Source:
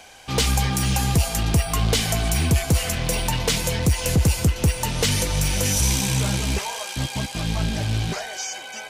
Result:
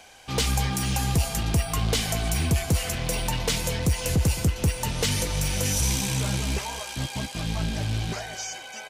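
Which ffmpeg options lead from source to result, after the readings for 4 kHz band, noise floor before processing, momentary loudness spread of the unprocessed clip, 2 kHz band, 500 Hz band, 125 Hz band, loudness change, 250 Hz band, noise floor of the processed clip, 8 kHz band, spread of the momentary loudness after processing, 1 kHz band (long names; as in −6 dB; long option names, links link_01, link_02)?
−4.0 dB, −37 dBFS, 7 LU, −4.0 dB, −4.0 dB, −4.0 dB, −4.0 dB, −4.0 dB, −41 dBFS, −4.0 dB, 7 LU, −4.0 dB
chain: -filter_complex "[0:a]asplit=2[link_01][link_02];[link_02]adelay=216,lowpass=frequency=2000:poles=1,volume=-15dB,asplit=2[link_03][link_04];[link_04]adelay=216,lowpass=frequency=2000:poles=1,volume=0.24,asplit=2[link_05][link_06];[link_06]adelay=216,lowpass=frequency=2000:poles=1,volume=0.24[link_07];[link_01][link_03][link_05][link_07]amix=inputs=4:normalize=0,volume=-4dB"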